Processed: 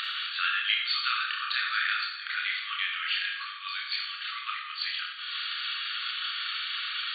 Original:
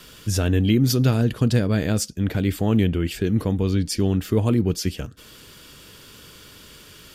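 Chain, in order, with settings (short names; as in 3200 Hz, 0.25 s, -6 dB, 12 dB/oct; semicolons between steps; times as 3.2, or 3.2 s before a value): upward compressor, threshold -27 dBFS; chorus voices 4, 0.35 Hz, delay 28 ms, depth 3.5 ms; FFT band-pass 1100–4600 Hz; Schroeder reverb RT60 0.97 s, DRR 2 dB; gain +8.5 dB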